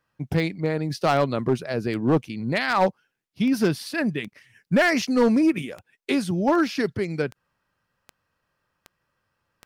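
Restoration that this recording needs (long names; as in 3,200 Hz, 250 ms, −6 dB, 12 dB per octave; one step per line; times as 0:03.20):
clipped peaks rebuilt −13 dBFS
click removal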